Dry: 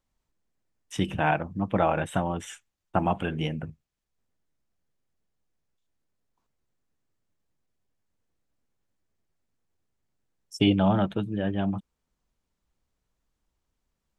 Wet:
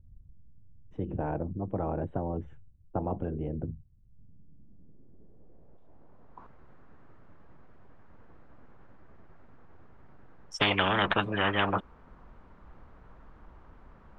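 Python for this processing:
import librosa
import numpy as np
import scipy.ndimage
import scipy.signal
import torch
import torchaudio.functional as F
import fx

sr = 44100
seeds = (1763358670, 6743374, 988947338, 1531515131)

y = fx.wow_flutter(x, sr, seeds[0], rate_hz=2.1, depth_cents=29.0)
y = fx.filter_sweep_lowpass(y, sr, from_hz=110.0, to_hz=1300.0, start_s=3.94, end_s=6.47, q=1.5)
y = fx.spectral_comp(y, sr, ratio=10.0)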